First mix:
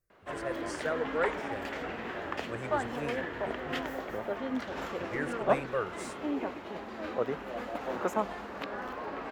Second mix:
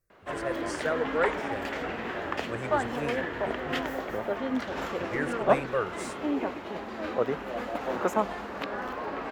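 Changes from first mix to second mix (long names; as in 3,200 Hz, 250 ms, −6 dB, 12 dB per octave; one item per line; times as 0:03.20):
speech +3.5 dB
background +4.0 dB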